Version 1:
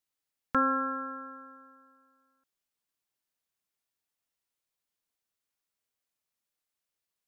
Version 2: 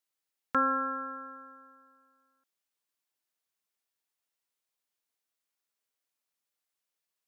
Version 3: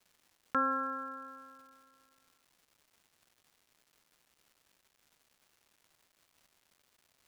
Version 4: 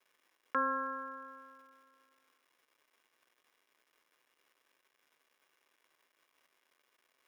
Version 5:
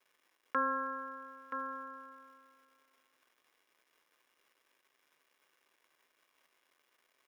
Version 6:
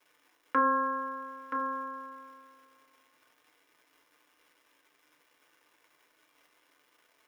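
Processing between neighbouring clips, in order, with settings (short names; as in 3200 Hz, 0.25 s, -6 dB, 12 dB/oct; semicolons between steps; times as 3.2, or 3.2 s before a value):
low shelf 160 Hz -12 dB
crackle 470/s -52 dBFS; gain -3.5 dB
reverb RT60 0.15 s, pre-delay 3 ms, DRR 16 dB; gain -6.5 dB
echo 0.976 s -8 dB
FDN reverb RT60 0.33 s, low-frequency decay 1.35×, high-frequency decay 0.55×, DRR 2 dB; gain +5 dB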